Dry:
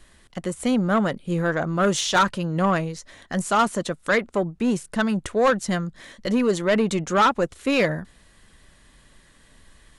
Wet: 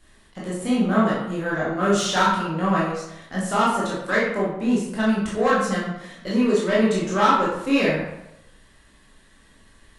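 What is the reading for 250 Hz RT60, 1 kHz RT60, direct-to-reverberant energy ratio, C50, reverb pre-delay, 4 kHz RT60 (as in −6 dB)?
0.75 s, 0.85 s, −7.0 dB, 1.5 dB, 14 ms, 0.55 s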